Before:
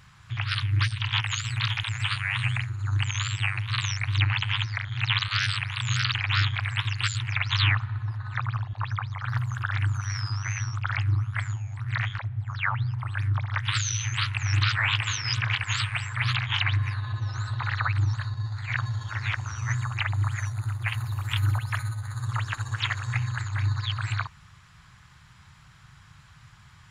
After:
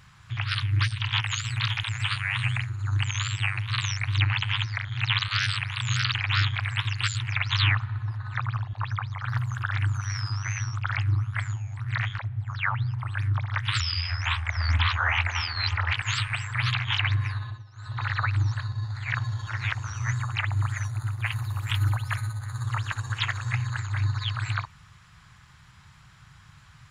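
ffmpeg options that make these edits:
-filter_complex "[0:a]asplit=5[s0][s1][s2][s3][s4];[s0]atrim=end=13.804[s5];[s1]atrim=start=13.8:end=15.54,asetpts=PTS-STARTPTS,asetrate=36162,aresample=44100,atrim=end_sample=93578,asetpts=PTS-STARTPTS[s6];[s2]atrim=start=15.536:end=17.26,asetpts=PTS-STARTPTS,afade=t=out:st=1.444:d=0.28:silence=0.11885[s7];[s3]atrim=start=17.26:end=17.37,asetpts=PTS-STARTPTS,volume=0.119[s8];[s4]atrim=start=17.37,asetpts=PTS-STARTPTS,afade=t=in:d=0.28:silence=0.11885[s9];[s5][s6]acrossfade=d=0.004:c1=hsin:c2=hsin[s10];[s7][s8][s9]concat=n=3:v=0:a=1[s11];[s10][s11]acrossfade=d=0.004:c1=hsin:c2=hsin"

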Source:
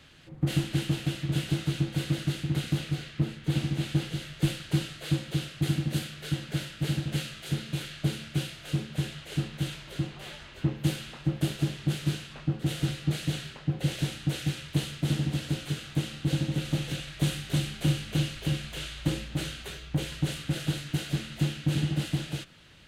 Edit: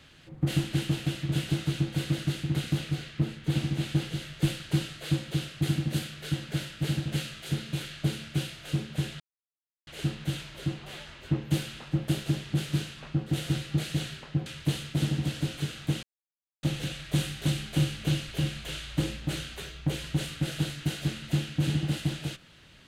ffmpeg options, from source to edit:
-filter_complex "[0:a]asplit=5[s0][s1][s2][s3][s4];[s0]atrim=end=9.2,asetpts=PTS-STARTPTS,afade=t=out:st=9.196:d=0.004:c=hsin,apad=pad_dur=0.67[s5];[s1]atrim=start=9.2:end=13.792,asetpts=PTS-STARTPTS,afade=t=in:d=0.004:c=hsin[s6];[s2]atrim=start=14.538:end=16.11,asetpts=PTS-STARTPTS,afade=t=out:st=1.568:d=0.004:c=hsin[s7];[s3]atrim=start=16.11:end=16.71,asetpts=PTS-STARTPTS,volume=0[s8];[s4]atrim=start=16.71,asetpts=PTS-STARTPTS,afade=t=in:d=0.004:c=hsin[s9];[s5][s6]concat=n=2:v=0:a=1[s10];[s7][s8][s9]concat=n=3:v=0:a=1[s11];[s10][s11]acrossfade=d=0.004:c1=hsin:c2=hsin"

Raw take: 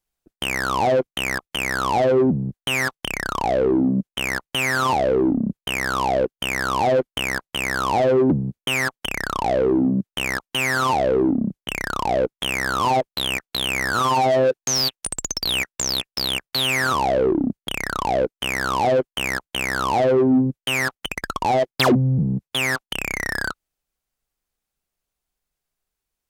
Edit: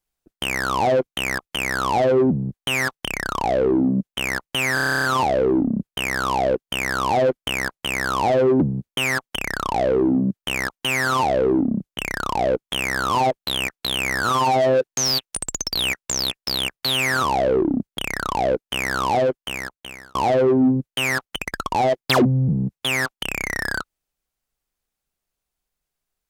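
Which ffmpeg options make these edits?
-filter_complex "[0:a]asplit=12[s0][s1][s2][s3][s4][s5][s6][s7][s8][s9][s10][s11];[s0]atrim=end=4.772[s12];[s1]atrim=start=4.738:end=4.772[s13];[s2]atrim=start=4.738:end=4.772[s14];[s3]atrim=start=4.738:end=4.772[s15];[s4]atrim=start=4.738:end=4.772[s16];[s5]atrim=start=4.738:end=4.772[s17];[s6]atrim=start=4.738:end=4.772[s18];[s7]atrim=start=4.738:end=4.772[s19];[s8]atrim=start=4.738:end=4.772[s20];[s9]atrim=start=4.738:end=4.772[s21];[s10]atrim=start=4.738:end=19.85,asetpts=PTS-STARTPTS,afade=t=out:st=14.092:d=1.02[s22];[s11]atrim=start=19.85,asetpts=PTS-STARTPTS,afade=t=in:d=0.004:c=hsin[s23];[s12][s13]acrossfade=d=0.004:c1=hsin:c2=hsin[s24];[s24][s14]acrossfade=d=0.004:c1=hsin:c2=hsin[s25];[s25][s15]acrossfade=d=0.004:c1=hsin:c2=hsin[s26];[s26][s16]acrossfade=d=0.004:c1=hsin:c2=hsin[s27];[s27][s17]acrossfade=d=0.004:c1=hsin:c2=hsin[s28];[s28][s18]acrossfade=d=0.004:c1=hsin:c2=hsin[s29];[s29][s19]acrossfade=d=0.004:c1=hsin:c2=hsin[s30];[s30][s20]acrossfade=d=0.004:c1=hsin:c2=hsin[s31];[s31][s21]acrossfade=d=0.004:c1=hsin:c2=hsin[s32];[s22][s23]concat=n=2:v=0:a=1[s33];[s32][s33]acrossfade=d=0.004:c1=hsin:c2=hsin"

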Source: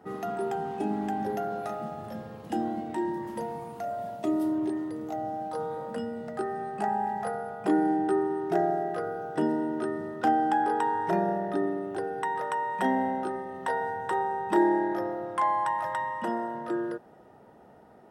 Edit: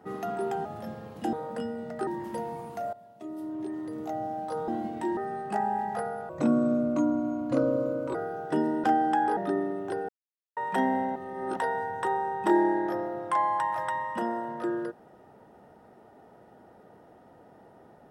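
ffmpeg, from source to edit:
-filter_complex "[0:a]asplit=15[s0][s1][s2][s3][s4][s5][s6][s7][s8][s9][s10][s11][s12][s13][s14];[s0]atrim=end=0.652[s15];[s1]atrim=start=1.928:end=2.612[s16];[s2]atrim=start=5.708:end=6.452[s17];[s3]atrim=start=3.098:end=3.96,asetpts=PTS-STARTPTS,afade=t=out:st=0.858:d=0.004:c=hsin:silence=0.149624[s18];[s4]atrim=start=3.96:end=5.712,asetpts=PTS-STARTPTS,afade=t=in:d=1.06:c=qua:silence=0.149624[s19];[s5]atrim=start=2.608:end=3.102[s20];[s6]atrim=start=6.448:end=7.574[s21];[s7]atrim=start=7.57:end=9,asetpts=PTS-STARTPTS,asetrate=33957,aresample=44100[s22];[s8]atrim=start=8.996:end=9.692[s23];[s9]atrim=start=10.218:end=10.752[s24];[s10]atrim=start=11.428:end=12.15,asetpts=PTS-STARTPTS,afade=t=out:st=0.718:d=0.004:c=hsin[s25];[s11]atrim=start=12.15:end=12.63,asetpts=PTS-STARTPTS,volume=0[s26];[s12]atrim=start=12.63:end=13.222,asetpts=PTS-STARTPTS,afade=t=in:d=0.004:c=hsin[s27];[s13]atrim=start=13.218:end=13.632,asetpts=PTS-STARTPTS,areverse[s28];[s14]atrim=start=13.628[s29];[s15][s16]acrossfade=d=0.004:c1=hsin:c2=hsin[s30];[s30][s17]acrossfade=d=0.004:c1=hsin:c2=hsin[s31];[s18][s19]concat=n=2:v=0:a=1[s32];[s31][s32]acrossfade=d=0.004:c1=hsin:c2=hsin[s33];[s33][s20]acrossfade=d=0.004:c1=hsin:c2=hsin[s34];[s34][s21]acrossfade=d=0.004:c1=hsin:c2=hsin[s35];[s35][s22]acrossfade=d=0.004:c1=hsin:c2=hsin[s36];[s36][s23]acrossfade=d=0.004:c1=hsin:c2=hsin[s37];[s37][s24]acrossfade=d=0.004:c1=hsin:c2=hsin[s38];[s25][s26][s27]concat=n=3:v=0:a=1[s39];[s38][s39]acrossfade=d=0.004:c1=hsin:c2=hsin[s40];[s40][s28]acrossfade=d=0.004:c1=hsin:c2=hsin[s41];[s41][s29]acrossfade=d=0.004:c1=hsin:c2=hsin"

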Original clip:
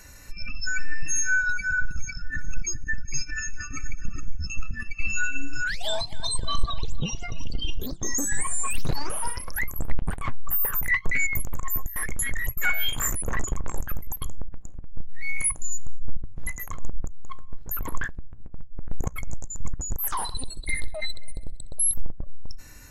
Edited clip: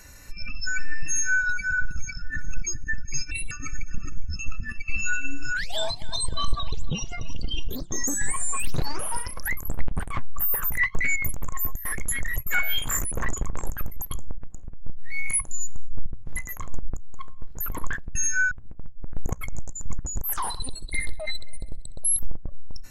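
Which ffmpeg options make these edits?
-filter_complex "[0:a]asplit=5[s0][s1][s2][s3][s4];[s0]atrim=end=3.314[s5];[s1]atrim=start=3.31:end=3.62,asetpts=PTS-STARTPTS,asetrate=67473,aresample=44100,atrim=end_sample=8935,asetpts=PTS-STARTPTS[s6];[s2]atrim=start=3.616:end=18.262[s7];[s3]atrim=start=1.078:end=1.442[s8];[s4]atrim=start=18.258[s9];[s5][s6]acrossfade=d=0.004:c1=hsin:c2=hsin[s10];[s10][s7]acrossfade=d=0.004:c1=hsin:c2=hsin[s11];[s11][s8]acrossfade=d=0.004:c1=hsin:c2=hsin[s12];[s12][s9]acrossfade=d=0.004:c1=hsin:c2=hsin"

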